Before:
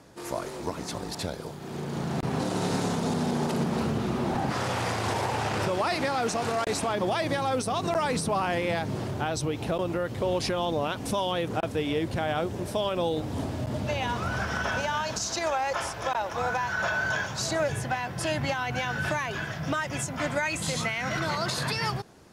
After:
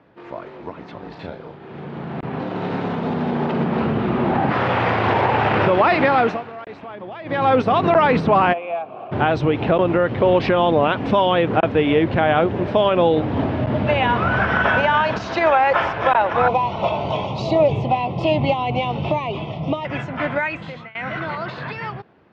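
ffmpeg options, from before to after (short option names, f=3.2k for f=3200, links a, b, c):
-filter_complex "[0:a]asettb=1/sr,asplit=3[a][b][c];[a]atrim=end=1.004[d];[b]atrim=start=1:end=1.88,asetpts=PTS-STARTPTS,afade=t=in:d=0.004:c=qsin,afade=t=out:st=0.876:d=0.004:c=qsin,asplit=2[e][f];[f]adelay=36,volume=-4.5dB[g];[e][g]amix=inputs=2:normalize=0,atrim=end_sample=38808[h];[c]atrim=start=1.876[i];[d][h]acrossfade=d=0.004:c1=hsin:c2=qsin[j];[j][i]acrossfade=d=0.004:c1=qsin:c2=hsin,asplit=3[k][l][m];[k]afade=t=out:st=8.52:d=0.02[n];[l]asplit=3[o][p][q];[o]bandpass=f=730:t=q:w=8,volume=0dB[r];[p]bandpass=f=1.09k:t=q:w=8,volume=-6dB[s];[q]bandpass=f=2.44k:t=q:w=8,volume=-9dB[t];[r][s][t]amix=inputs=3:normalize=0,afade=t=in:st=8.52:d=0.02,afade=t=out:st=9.11:d=0.02[u];[m]afade=t=in:st=9.11:d=0.02[v];[n][u][v]amix=inputs=3:normalize=0,asettb=1/sr,asplit=3[w][x][y];[w]atrim=end=16.484[z];[x]atrim=start=16.48:end=19.85,asetpts=PTS-STARTPTS,afade=t=in:d=0.004:c=qsin,afade=t=out:st=3.366:d=0.004:c=qsin,asuperstop=centerf=1600:order=4:qfactor=1[aa];[y]atrim=start=19.846[ab];[z][aa]acrossfade=d=0.004:c1=hsin:c2=qsin[ac];[ac][ab]acrossfade=d=0.004:c1=qsin:c2=hsin,asplit=4[ad][ae][af][ag];[ad]atrim=end=6.44,asetpts=PTS-STARTPTS,afade=t=out:st=6.2:d=0.24:silence=0.11885[ah];[ae]atrim=start=6.44:end=7.24,asetpts=PTS-STARTPTS,volume=-18.5dB[ai];[af]atrim=start=7.24:end=20.95,asetpts=PTS-STARTPTS,afade=t=in:d=0.24:silence=0.11885,afade=t=out:st=13.19:d=0.52:silence=0.0749894[aj];[ag]atrim=start=20.95,asetpts=PTS-STARTPTS,afade=t=in:d=0.004:c=hsin:silence=0.0749894[ak];[ah][ai][aj][ak]concat=n=4:v=0:a=1,lowpass=f=2.9k:w=0.5412,lowpass=f=2.9k:w=1.3066,dynaudnorm=f=840:g=9:m=14dB,highpass=f=120:p=1"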